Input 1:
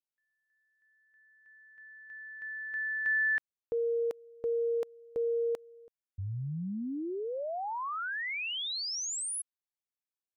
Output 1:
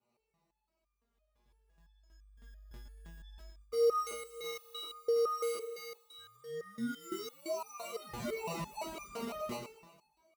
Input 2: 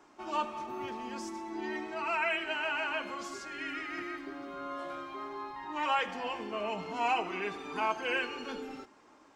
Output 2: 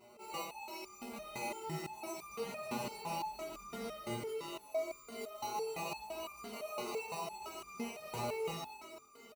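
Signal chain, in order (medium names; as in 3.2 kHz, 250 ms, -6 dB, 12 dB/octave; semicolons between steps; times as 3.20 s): RIAA curve recording; compression 5:1, threshold -34 dBFS; peaking EQ 380 Hz +7.5 dB 0.53 oct; two-band feedback delay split 1.4 kHz, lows 401 ms, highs 116 ms, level -7 dB; sample-rate reducer 1.7 kHz, jitter 0%; peak limiter -31 dBFS; comb 4.9 ms, depth 66%; chorus 0.48 Hz, delay 18 ms, depth 6.3 ms; high-pass 58 Hz 12 dB/octave; resonator arpeggio 5.9 Hz 120–1200 Hz; trim +12.5 dB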